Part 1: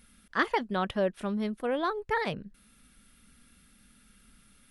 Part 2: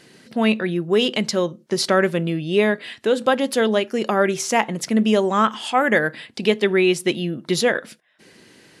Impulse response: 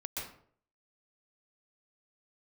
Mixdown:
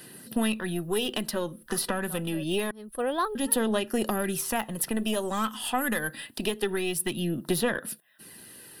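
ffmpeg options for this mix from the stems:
-filter_complex "[0:a]adelay=1350,volume=1.5dB[a];[1:a]equalizer=f=490:w=1.5:g=-3.5,acrossover=split=240|3300[b][c][d];[b]acompressor=threshold=-32dB:ratio=4[e];[c]acompressor=threshold=-27dB:ratio=4[f];[d]acompressor=threshold=-40dB:ratio=4[g];[e][f][g]amix=inputs=3:normalize=0,aeval=exprs='(tanh(5.01*val(0)+0.65)-tanh(0.65))/5.01':c=same,volume=1.5dB,asplit=3[h][i][j];[h]atrim=end=2.71,asetpts=PTS-STARTPTS,afade=t=out:st=2.706:d=0.004:c=hsin[k];[i]atrim=start=2.71:end=3.35,asetpts=PTS-STARTPTS,volume=0[l];[j]atrim=start=3.35,asetpts=PTS-STARTPTS,afade=t=in:d=0.004:c=hsin[m];[k][l][m]concat=n=3:v=0:a=1,asplit=2[n][o];[o]apad=whole_len=267189[p];[a][p]sidechaincompress=threshold=-48dB:ratio=12:attack=7.4:release=183[q];[q][n]amix=inputs=2:normalize=0,aphaser=in_gain=1:out_gain=1:delay=4.1:decay=0.32:speed=0.26:type=sinusoidal,aexciter=amount=10.8:drive=6.2:freq=9.5k,asuperstop=centerf=2200:order=4:qfactor=6.7"

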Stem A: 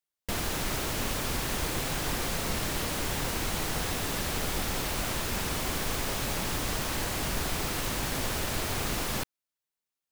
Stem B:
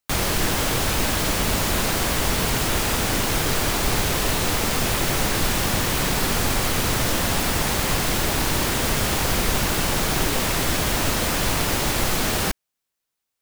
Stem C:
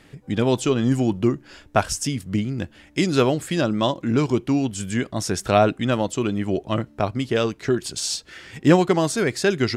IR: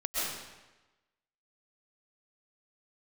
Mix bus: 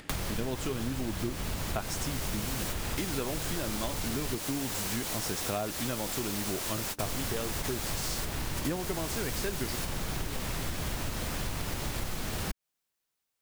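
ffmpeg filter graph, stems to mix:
-filter_complex "[0:a]dynaudnorm=f=470:g=3:m=9dB,bass=f=250:g=-6,treble=f=4k:g=6,adelay=1500,volume=-8dB[a];[1:a]acrossover=split=190[b][c];[c]acompressor=threshold=-27dB:ratio=6[d];[b][d]amix=inputs=2:normalize=0,volume=-2dB,asplit=3[e][f][g];[e]atrim=end=4.35,asetpts=PTS-STARTPTS,afade=t=out:st=4.346:d=0.004:c=hsin[h];[f]atrim=start=4.35:end=7.03,asetpts=PTS-STARTPTS,volume=0[i];[g]atrim=start=7.03,asetpts=PTS-STARTPTS,afade=t=in:d=0.004:c=hsin[j];[h][i][j]concat=n=3:v=0:a=1[k];[2:a]acompressor=mode=upward:threshold=-40dB:ratio=2.5,volume=-4.5dB,asplit=2[l][m];[m]apad=whole_len=512293[n];[a][n]sidechaingate=range=-33dB:threshold=-40dB:ratio=16:detection=peak[o];[o][k][l]amix=inputs=3:normalize=0,acompressor=threshold=-30dB:ratio=6"

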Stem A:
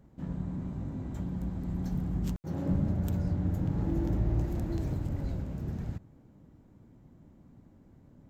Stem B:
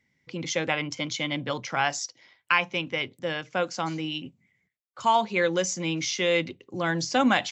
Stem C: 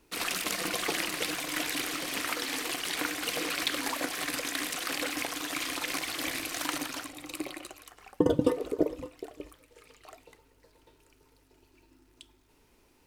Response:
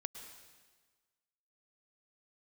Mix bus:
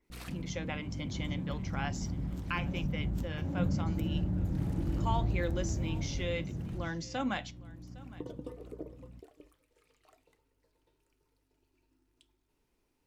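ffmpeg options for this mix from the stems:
-filter_complex "[0:a]aeval=exprs='val(0)+0.00398*(sin(2*PI*60*n/s)+sin(2*PI*2*60*n/s)/2+sin(2*PI*3*60*n/s)/3+sin(2*PI*4*60*n/s)/4+sin(2*PI*5*60*n/s)/5)':c=same,adelay=100,volume=2dB,asplit=2[a][b];[b]volume=-4.5dB[c];[1:a]volume=-9dB,asplit=3[d][e][f];[e]volume=-20.5dB[g];[2:a]adynamicequalizer=threshold=0.00447:dfrequency=2300:dqfactor=0.7:tfrequency=2300:tqfactor=0.7:attack=5:release=100:ratio=0.375:range=2:mode=cutabove:tftype=highshelf,volume=-10.5dB[h];[f]apad=whole_len=576357[i];[h][i]sidechaincompress=threshold=-55dB:ratio=8:attack=5.3:release=337[j];[a][j]amix=inputs=2:normalize=0,acompressor=threshold=-35dB:ratio=6,volume=0dB[k];[c][g]amix=inputs=2:normalize=0,aecho=0:1:810:1[l];[d][k][l]amix=inputs=3:normalize=0,lowshelf=f=320:g=4.5,flanger=delay=5.2:depth=2.5:regen=-81:speed=0.72:shape=triangular"

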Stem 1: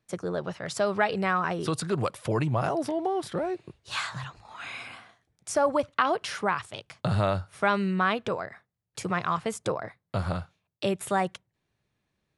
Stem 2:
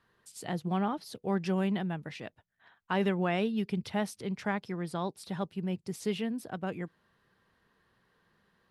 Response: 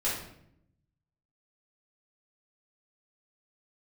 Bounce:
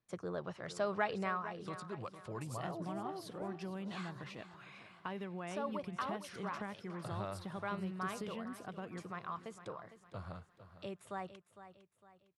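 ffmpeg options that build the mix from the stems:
-filter_complex "[0:a]highshelf=f=8.5k:g=-10.5,volume=-10dB,afade=t=out:st=1.2:d=0.24:silence=0.421697,asplit=2[a][b];[b]volume=-13dB[c];[1:a]acompressor=threshold=-35dB:ratio=4,adelay=2150,volume=-6.5dB,asplit=2[d][e];[e]volume=-15dB[f];[c][f]amix=inputs=2:normalize=0,aecho=0:1:456|912|1368|1824|2280:1|0.39|0.152|0.0593|0.0231[g];[a][d][g]amix=inputs=3:normalize=0,equalizer=f=1.1k:t=o:w=0.3:g=4.5"

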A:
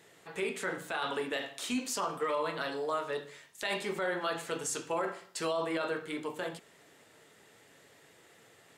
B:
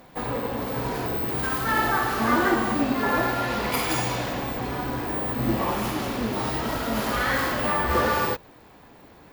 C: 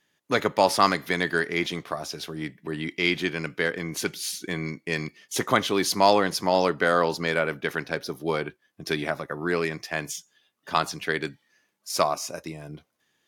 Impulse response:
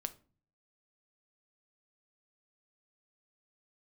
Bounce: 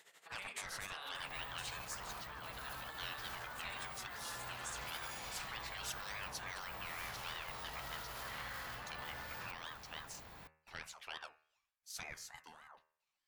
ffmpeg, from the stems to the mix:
-filter_complex "[0:a]highpass=300,tremolo=f=12:d=0.81,volume=1.5dB[a];[1:a]acompressor=threshold=-34dB:ratio=6,adelay=1150,volume=-0.5dB[b];[2:a]alimiter=limit=-12dB:level=0:latency=1:release=152,aeval=exprs='val(0)*sin(2*PI*1000*n/s+1000*0.45/3.4*sin(2*PI*3.4*n/s))':c=same,volume=-14dB[c];[a][b]amix=inputs=2:normalize=0,alimiter=level_in=9.5dB:limit=-24dB:level=0:latency=1:release=18,volume=-9.5dB,volume=0dB[d];[c][d]amix=inputs=2:normalize=0,afftfilt=real='re*lt(hypot(re,im),0.0355)':imag='im*lt(hypot(re,im),0.0355)':win_size=1024:overlap=0.75,equalizer=f=320:w=0.82:g=-12.5,bandreject=f=78.7:t=h:w=4,bandreject=f=157.4:t=h:w=4,bandreject=f=236.1:t=h:w=4,bandreject=f=314.8:t=h:w=4,bandreject=f=393.5:t=h:w=4,bandreject=f=472.2:t=h:w=4,bandreject=f=550.9:t=h:w=4,bandreject=f=629.6:t=h:w=4,bandreject=f=708.3:t=h:w=4,bandreject=f=787:t=h:w=4,bandreject=f=865.7:t=h:w=4,bandreject=f=944.4:t=h:w=4,bandreject=f=1.0231k:t=h:w=4,bandreject=f=1.1018k:t=h:w=4,bandreject=f=1.1805k:t=h:w=4,bandreject=f=1.2592k:t=h:w=4,bandreject=f=1.3379k:t=h:w=4,bandreject=f=1.4166k:t=h:w=4,bandreject=f=1.4953k:t=h:w=4,bandreject=f=1.574k:t=h:w=4,bandreject=f=1.6527k:t=h:w=4,bandreject=f=1.7314k:t=h:w=4,bandreject=f=1.8101k:t=h:w=4,bandreject=f=1.8888k:t=h:w=4,bandreject=f=1.9675k:t=h:w=4,bandreject=f=2.0462k:t=h:w=4,bandreject=f=2.1249k:t=h:w=4,bandreject=f=2.2036k:t=h:w=4,bandreject=f=2.2823k:t=h:w=4,bandreject=f=2.361k:t=h:w=4,bandreject=f=2.4397k:t=h:w=4,bandreject=f=2.5184k:t=h:w=4,bandreject=f=2.5971k:t=h:w=4,bandreject=f=2.6758k:t=h:w=4,bandreject=f=2.7545k:t=h:w=4,bandreject=f=2.8332k:t=h:w=4"

